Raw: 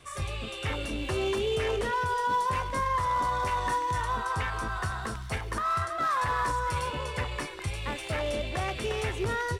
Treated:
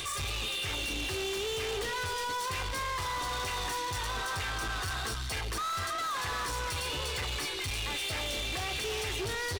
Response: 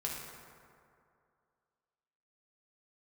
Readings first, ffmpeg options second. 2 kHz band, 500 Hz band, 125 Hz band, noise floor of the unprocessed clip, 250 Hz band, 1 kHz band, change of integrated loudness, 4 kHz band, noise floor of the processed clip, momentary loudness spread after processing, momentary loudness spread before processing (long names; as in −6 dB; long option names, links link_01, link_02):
−1.0 dB, −6.0 dB, −5.5 dB, −39 dBFS, −6.0 dB, −7.0 dB, −3.0 dB, +5.5 dB, −35 dBFS, 1 LU, 7 LU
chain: -af "equalizer=frequency=3600:width=0.63:gain=14.5,aecho=1:1:2.5:0.43,crystalizer=i=3.5:c=0,alimiter=limit=-14.5dB:level=0:latency=1:release=17,tiltshelf=frequency=1500:gain=5.5,acompressor=mode=upward:threshold=-27dB:ratio=2.5,asoftclip=type=tanh:threshold=-30.5dB,volume=-1.5dB"